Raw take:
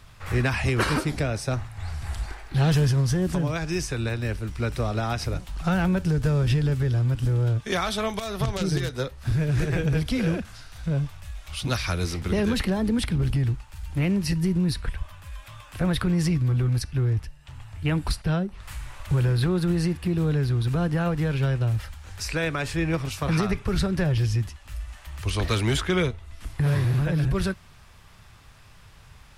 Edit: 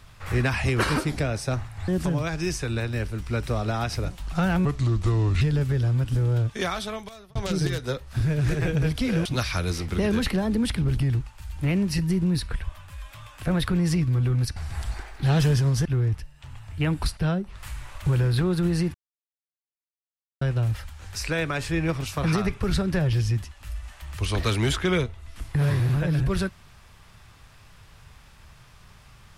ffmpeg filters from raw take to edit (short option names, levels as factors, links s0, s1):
-filter_complex "[0:a]asplit=10[s0][s1][s2][s3][s4][s5][s6][s7][s8][s9];[s0]atrim=end=1.882[s10];[s1]atrim=start=3.168:end=5.944[s11];[s2]atrim=start=5.94:end=6.52,asetpts=PTS-STARTPTS,asetrate=33516,aresample=44100,atrim=end_sample=33655,asetpts=PTS-STARTPTS[s12];[s3]atrim=start=6.516:end=8.46,asetpts=PTS-STARTPTS,afade=t=out:st=1.094:d=0.85[s13];[s4]atrim=start=8.46:end=10.362,asetpts=PTS-STARTPTS,afade=t=in:d=0.004:c=hsin[s14];[s5]atrim=start=11.588:end=16.902[s15];[s6]atrim=start=1.878:end=3.172[s16];[s7]atrim=start=16.898:end=19.99,asetpts=PTS-STARTPTS,afade=t=out:st=3.088:d=0.004:c=hsin[s17];[s8]atrim=start=19.99:end=21.46,asetpts=PTS-STARTPTS,volume=0[s18];[s9]atrim=start=21.46,asetpts=PTS-STARTPTS,afade=t=in:d=0.004:c=hsin[s19];[s10][s11]acrossfade=d=0.004:c1=hsin:c2=hsin[s20];[s20][s12]acrossfade=d=0.004:c1=hsin:c2=hsin[s21];[s13][s14]concat=n=2:v=0:a=1[s22];[s21][s22]acrossfade=d=0.004:c1=hsin:c2=hsin[s23];[s23][s15]acrossfade=d=0.004:c1=hsin:c2=hsin[s24];[s24][s16]acrossfade=d=0.004:c1=hsin:c2=hsin[s25];[s17][s18][s19]concat=n=3:v=0:a=1[s26];[s25][s26]acrossfade=d=0.004:c1=hsin:c2=hsin"